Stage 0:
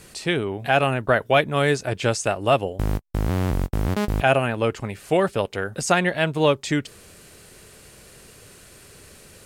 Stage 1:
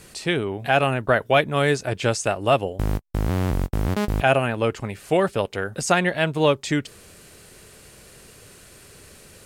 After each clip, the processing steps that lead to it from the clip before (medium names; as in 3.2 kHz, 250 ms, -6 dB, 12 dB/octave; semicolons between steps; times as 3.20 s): no audible change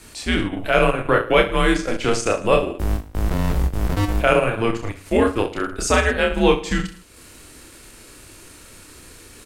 frequency shift -110 Hz; reverse bouncing-ball echo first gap 30 ms, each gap 1.2×, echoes 5; transient shaper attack -3 dB, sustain -7 dB; trim +2 dB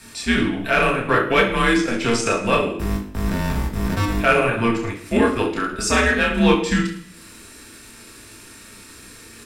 in parallel at -4 dB: overload inside the chain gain 12.5 dB; on the sum: reverberation RT60 0.55 s, pre-delay 3 ms, DRR 1.5 dB; trim -4.5 dB